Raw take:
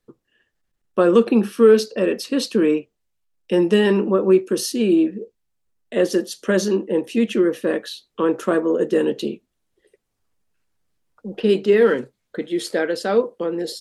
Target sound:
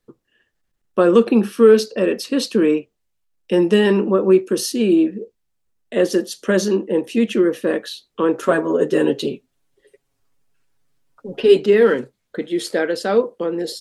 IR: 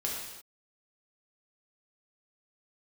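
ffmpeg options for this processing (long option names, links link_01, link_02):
-filter_complex "[0:a]asettb=1/sr,asplit=3[link_01][link_02][link_03];[link_01]atrim=end=8.424[link_04];[link_02]atrim=start=8.42:end=11.66,asetpts=PTS-STARTPTS,afade=type=in:duration=0.004:curve=qsin,afade=type=out:start_time=3.236:duration=0.004:curve=qsin,aecho=1:1:7.3:0.92,atrim=end_sample=142884[link_05];[link_03]atrim=start=11.656[link_06];[link_04][link_05]acrossfade=duration=0.004:curve1=hsin:curve2=qsin[link_07];[link_07][link_06]acrossfade=duration=0.004:curve1=qsin:curve2=hsin,volume=1.5dB"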